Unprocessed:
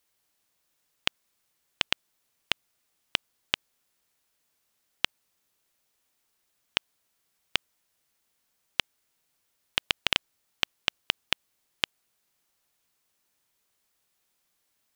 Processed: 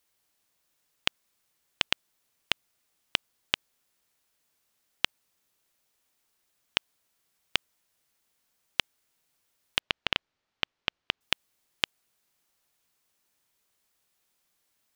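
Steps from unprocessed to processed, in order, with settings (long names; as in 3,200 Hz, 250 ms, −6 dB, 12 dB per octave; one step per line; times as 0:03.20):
0:09.79–0:11.21: high-frequency loss of the air 170 metres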